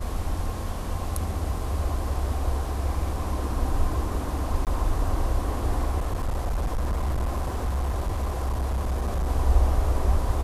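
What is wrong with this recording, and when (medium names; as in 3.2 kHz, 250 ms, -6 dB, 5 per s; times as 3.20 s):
4.65–4.67 s: dropout 18 ms
5.98–9.28 s: clipped -22 dBFS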